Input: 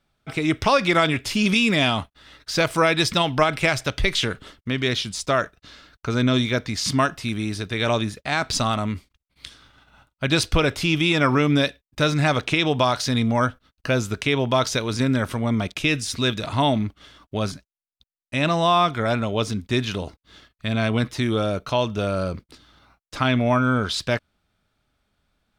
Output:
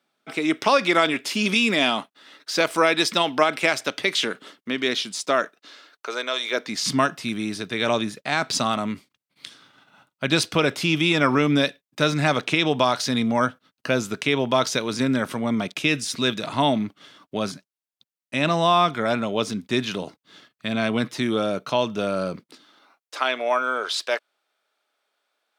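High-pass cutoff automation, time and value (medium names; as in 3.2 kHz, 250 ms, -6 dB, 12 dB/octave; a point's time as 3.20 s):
high-pass 24 dB/octave
5.40 s 220 Hz
6.39 s 560 Hz
6.81 s 150 Hz
22.33 s 150 Hz
23.18 s 420 Hz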